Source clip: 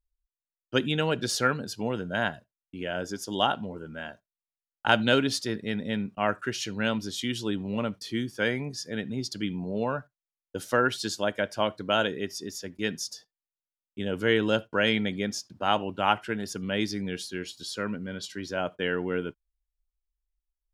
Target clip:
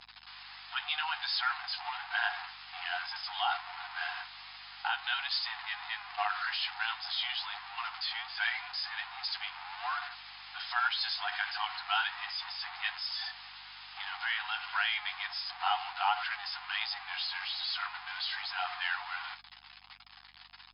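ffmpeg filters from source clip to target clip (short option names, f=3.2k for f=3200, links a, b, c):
-af "aeval=exprs='val(0)+0.5*0.0473*sgn(val(0))':c=same,alimiter=limit=-13dB:level=0:latency=1:release=113,flanger=delay=8.4:depth=5.2:regen=-22:speed=1.3:shape=sinusoidal,afftfilt=real='re*between(b*sr/4096,700,5200)':imag='im*between(b*sr/4096,700,5200)':win_size=4096:overlap=0.75,aeval=exprs='val(0)+0.000316*(sin(2*PI*50*n/s)+sin(2*PI*2*50*n/s)/2+sin(2*PI*3*50*n/s)/3+sin(2*PI*4*50*n/s)/4+sin(2*PI*5*50*n/s)/5)':c=same"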